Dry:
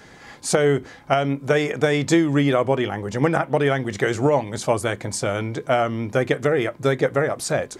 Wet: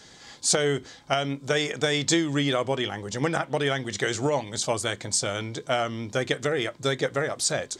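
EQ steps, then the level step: dynamic EQ 1900 Hz, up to +4 dB, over -36 dBFS, Q 1.1; band shelf 5200 Hz +11.5 dB; -7.0 dB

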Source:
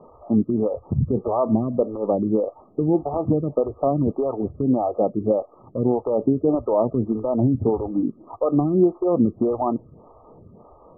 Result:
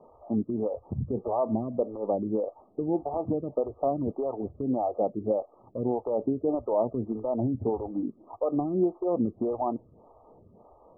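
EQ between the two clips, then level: synth low-pass 850 Hz, resonance Q 1.6; bell 150 Hz -6 dB 0.24 oct; -9.0 dB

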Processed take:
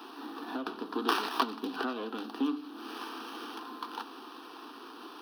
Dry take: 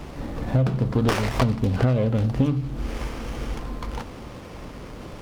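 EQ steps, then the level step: steep high-pass 280 Hz 48 dB/oct; fixed phaser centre 2100 Hz, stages 6; 0.0 dB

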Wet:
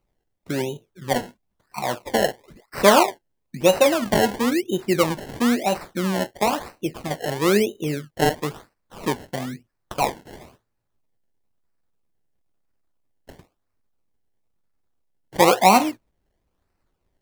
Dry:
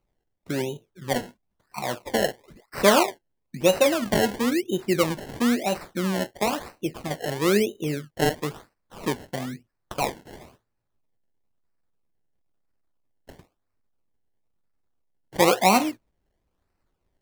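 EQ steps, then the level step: dynamic EQ 870 Hz, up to +4 dB, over -34 dBFS, Q 1.8; +2.0 dB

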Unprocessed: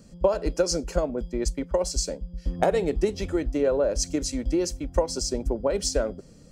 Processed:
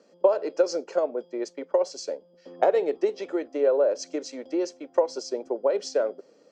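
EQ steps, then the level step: HPF 410 Hz 24 dB/oct; LPF 6500 Hz 24 dB/oct; tilt -3 dB/oct; 0.0 dB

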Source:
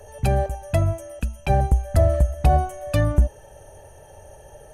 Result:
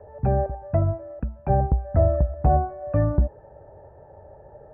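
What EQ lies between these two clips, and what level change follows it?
HPF 84 Hz 6 dB/oct; Bessel low-pass 970 Hz, order 8; +1.0 dB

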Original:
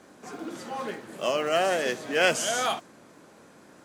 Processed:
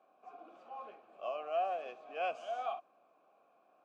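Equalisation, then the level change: vowel filter a; LPF 3700 Hz 6 dB/oct; low shelf 90 Hz -5.5 dB; -4.0 dB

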